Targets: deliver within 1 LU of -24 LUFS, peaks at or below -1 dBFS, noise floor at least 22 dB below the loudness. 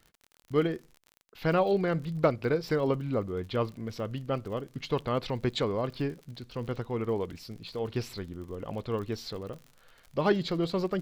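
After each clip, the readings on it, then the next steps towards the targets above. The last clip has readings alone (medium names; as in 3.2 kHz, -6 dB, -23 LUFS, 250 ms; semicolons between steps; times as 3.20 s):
tick rate 48 per s; loudness -31.5 LUFS; peak level -11.5 dBFS; loudness target -24.0 LUFS
-> de-click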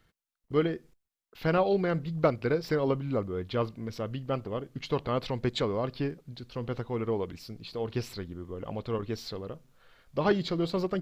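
tick rate 0.18 per s; loudness -31.5 LUFS; peak level -11.5 dBFS; loudness target -24.0 LUFS
-> trim +7.5 dB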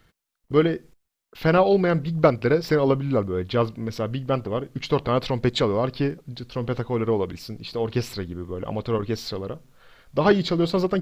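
loudness -24.0 LUFS; peak level -4.0 dBFS; noise floor -78 dBFS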